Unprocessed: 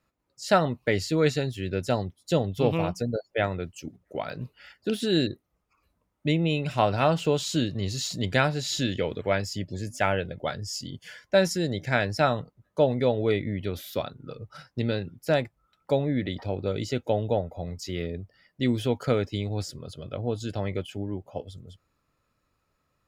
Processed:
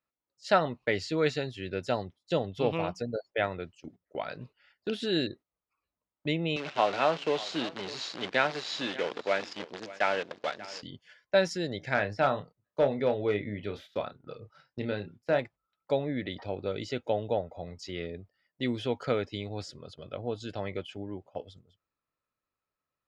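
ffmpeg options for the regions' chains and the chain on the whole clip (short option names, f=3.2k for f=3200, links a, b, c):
-filter_complex "[0:a]asettb=1/sr,asplit=3[a][b][c];[a]atrim=end=6.564[d];[b]atrim=start=6.56:end=10.83,asetpts=PTS-STARTPTS,afade=t=in:d=0.004:c=qsin,afade=t=out:st=4.266:d=0.004:c=qsin,acrusher=bits=6:dc=4:mix=0:aa=0.000001,highpass=240,lowpass=5.4k,aecho=1:1:589:0.133,atrim=end_sample=188307[e];[c]atrim=start=10.826[f];[d][e]acrossfade=d=0.004:c1=hsin:c2=qsin[g];[g][f]acrossfade=d=0.004:c1=qsin:c2=hsin,asettb=1/sr,asplit=3[h][i][j];[h]atrim=end=11.944[k];[i]atrim=start=11.94:end=15.39,asetpts=PTS-STARTPTS,afade=t=in:d=0.004:c=qsin,afade=t=out:st=3.446:d=0.004:c=qsin,acrossover=split=2700[l][m];[m]acompressor=threshold=-47dB:ratio=4:attack=1:release=60[n];[l][n]amix=inputs=2:normalize=0,asoftclip=type=hard:threshold=-14dB,asplit=2[o][p];[p]adelay=29,volume=-9dB[q];[o][q]amix=inputs=2:normalize=0,atrim=end_sample=152145[r];[j]atrim=start=15.386[s];[k][r]acrossfade=d=0.004:c1=hsin:c2=qsin[t];[t][s]acrossfade=d=0.004:c1=qsin:c2=hsin,lowpass=4.8k,agate=range=-12dB:threshold=-42dB:ratio=16:detection=peak,lowshelf=f=240:g=-10,volume=-1.5dB"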